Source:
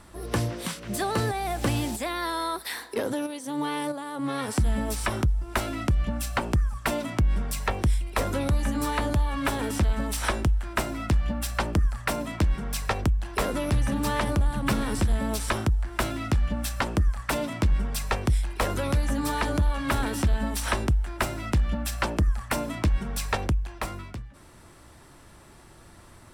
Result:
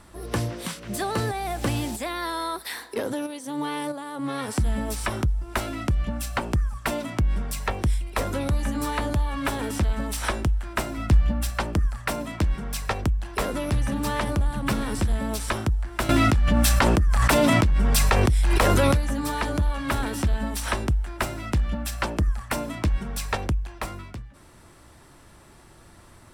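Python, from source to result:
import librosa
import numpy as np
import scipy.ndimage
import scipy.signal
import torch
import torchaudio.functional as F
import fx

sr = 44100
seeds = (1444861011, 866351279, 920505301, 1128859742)

y = fx.low_shelf(x, sr, hz=170.0, db=6.5, at=(10.97, 11.5))
y = fx.env_flatten(y, sr, amount_pct=100, at=(16.09, 18.97))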